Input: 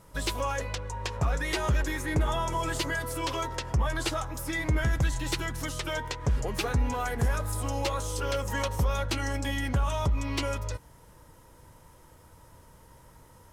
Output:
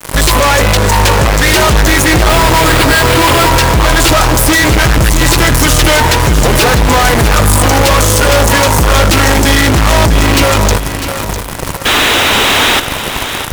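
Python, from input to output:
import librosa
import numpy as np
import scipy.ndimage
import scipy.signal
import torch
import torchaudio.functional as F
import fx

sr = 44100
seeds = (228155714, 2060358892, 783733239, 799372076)

y = fx.vibrato(x, sr, rate_hz=0.63, depth_cents=42.0)
y = fx.sample_hold(y, sr, seeds[0], rate_hz=6100.0, jitter_pct=20, at=(2.29, 3.5))
y = fx.spec_paint(y, sr, seeds[1], shape='noise', start_s=11.85, length_s=0.95, low_hz=200.0, high_hz=4000.0, level_db=-41.0)
y = fx.fuzz(y, sr, gain_db=56.0, gate_db=-49.0)
y = fx.echo_feedback(y, sr, ms=651, feedback_pct=38, wet_db=-10)
y = y * librosa.db_to_amplitude(6.0)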